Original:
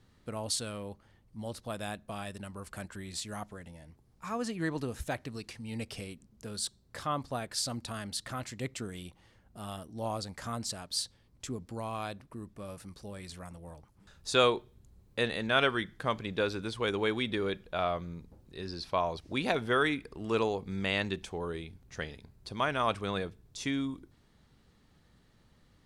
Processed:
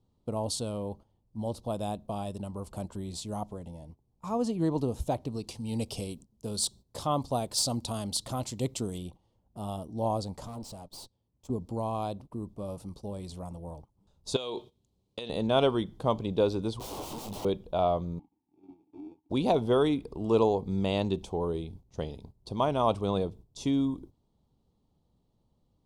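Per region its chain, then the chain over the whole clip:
5.47–8.98 s: treble shelf 2.4 kHz +8.5 dB + hard clipper -18.5 dBFS
10.45–11.50 s: high-pass 51 Hz 24 dB/octave + valve stage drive 42 dB, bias 0.7
14.36–15.30 s: frequency weighting D + compression 16:1, threshold -32 dBFS
16.79–17.45 s: peaking EQ 1.4 kHz +2.5 dB 1.1 oct + integer overflow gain 32.5 dB + detune thickener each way 30 cents
18.19–19.30 s: sample-rate reducer 1 kHz + compression 3:1, threshold -40 dBFS + vowel filter u
whole clip: FFT filter 950 Hz 0 dB, 1.7 kHz -24 dB, 3.2 kHz -8 dB; gate -53 dBFS, range -13 dB; trim +6 dB

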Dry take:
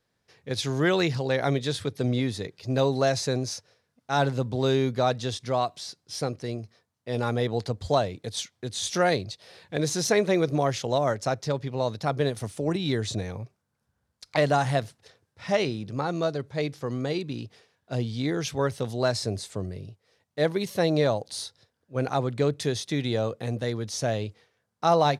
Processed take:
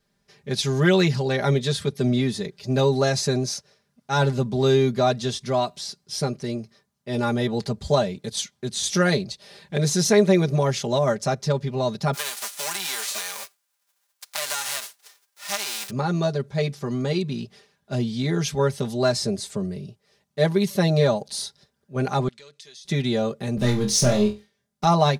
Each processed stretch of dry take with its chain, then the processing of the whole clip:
12.13–15.89 s: formants flattened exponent 0.3 + high-pass 760 Hz + compression 4:1, threshold -28 dBFS
22.28–22.85 s: band-pass filter 4.6 kHz, Q 0.89 + compression 5:1, threshold -47 dBFS
23.57–24.85 s: peaking EQ 1.1 kHz -6.5 dB 1.9 oct + waveshaping leveller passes 2 + flutter echo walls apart 4.1 m, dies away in 0.26 s
whole clip: tone controls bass +6 dB, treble +3 dB; comb 5 ms, depth 89%

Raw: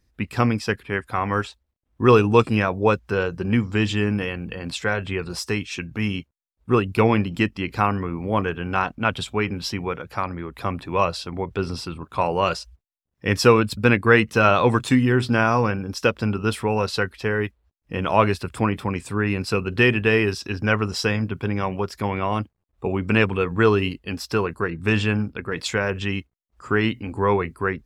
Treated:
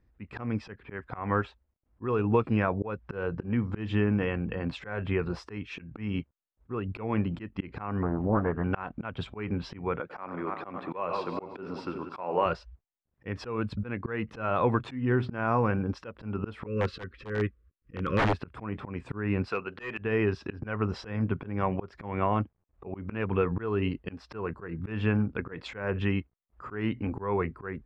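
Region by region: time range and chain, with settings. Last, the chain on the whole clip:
8.02–8.64 s: low-pass 1.6 kHz 24 dB/octave + loudspeaker Doppler distortion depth 0.65 ms
10.00–12.46 s: backward echo that repeats 180 ms, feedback 40%, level -10 dB + high-pass 250 Hz + feedback delay 96 ms, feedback 39%, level -15 dB
16.66–18.33 s: Chebyshev band-stop 540–1100 Hz, order 4 + bass shelf 210 Hz +4 dB + integer overflow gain 13 dB
19.48–19.98 s: high-pass 1.1 kHz 6 dB/octave + hard clipper -19.5 dBFS
whole clip: low-pass 1.8 kHz 12 dB/octave; compression 5:1, threshold -21 dBFS; slow attack 212 ms

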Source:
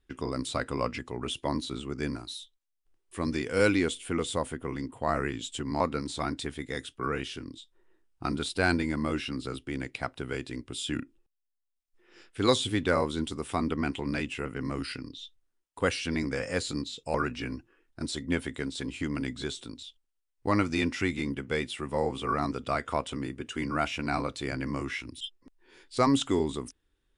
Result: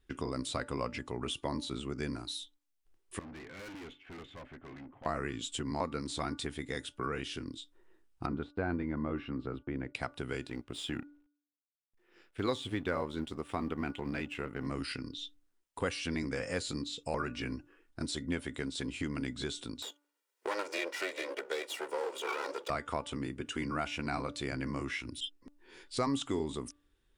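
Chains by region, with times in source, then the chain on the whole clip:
3.19–5.06 s: four-pole ladder low-pass 2.5 kHz, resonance 40% + comb of notches 480 Hz + valve stage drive 46 dB, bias 0.35
8.26–9.95 s: de-esser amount 90% + low-pass 1.5 kHz + gate -53 dBFS, range -21 dB
10.47–14.67 s: companding laws mixed up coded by A + tone controls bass -1 dB, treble -9 dB
19.82–22.70 s: comb filter that takes the minimum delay 2.1 ms + high-pass 340 Hz 24 dB/octave + three bands compressed up and down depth 40%
whole clip: compression 2:1, threshold -38 dBFS; de-hum 291.3 Hz, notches 5; trim +1.5 dB

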